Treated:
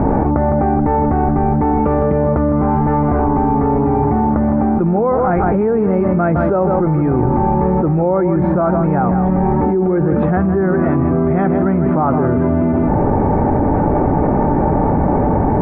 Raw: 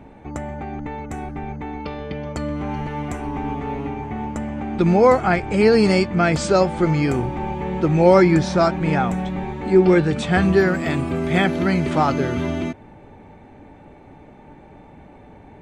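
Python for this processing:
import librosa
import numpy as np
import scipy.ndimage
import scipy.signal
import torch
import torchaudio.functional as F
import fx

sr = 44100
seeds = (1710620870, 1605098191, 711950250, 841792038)

p1 = scipy.signal.sosfilt(scipy.signal.butter(4, 1300.0, 'lowpass', fs=sr, output='sos'), x)
p2 = p1 + fx.echo_single(p1, sr, ms=158, db=-10.5, dry=0)
p3 = fx.env_flatten(p2, sr, amount_pct=100)
y = p3 * 10.0 ** (-5.0 / 20.0)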